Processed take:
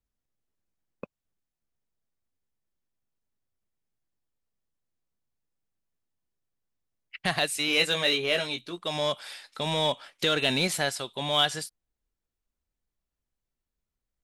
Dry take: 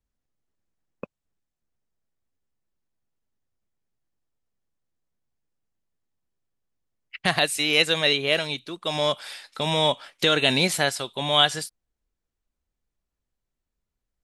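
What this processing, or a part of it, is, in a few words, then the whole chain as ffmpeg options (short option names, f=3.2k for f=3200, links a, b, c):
parallel distortion: -filter_complex "[0:a]asettb=1/sr,asplit=3[a][b][c];[a]atrim=end=7.664[d];[b]atrim=start=7.66:end=8.83,asetpts=PTS-STARTPTS,afade=t=in:d=0.004:c=qsin,afade=t=out:st=1.166:d=0.004:c=qsin,asplit=2[e][f];[f]adelay=17,volume=-5.5dB[g];[e][g]amix=inputs=2:normalize=0,atrim=end_sample=51597[h];[c]atrim=start=8.826[i];[d][h]acrossfade=d=0.004:c1=hsin:c2=qsin[j];[j][i]acrossfade=d=0.004:c1=qsin:c2=hsin,asplit=2[k][l];[l]asoftclip=type=hard:threshold=-21.5dB,volume=-7.5dB[m];[k][m]amix=inputs=2:normalize=0,volume=-6.5dB"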